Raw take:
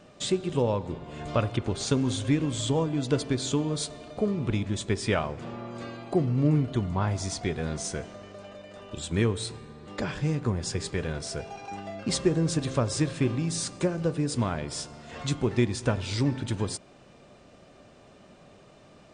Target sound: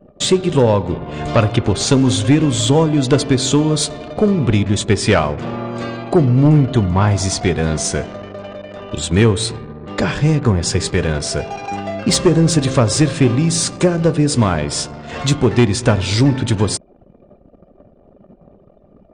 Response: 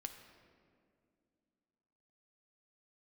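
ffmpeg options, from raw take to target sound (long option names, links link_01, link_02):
-af "aeval=exprs='0.282*sin(PI/2*1.58*val(0)/0.282)':channel_layout=same,anlmdn=0.631,volume=6dB"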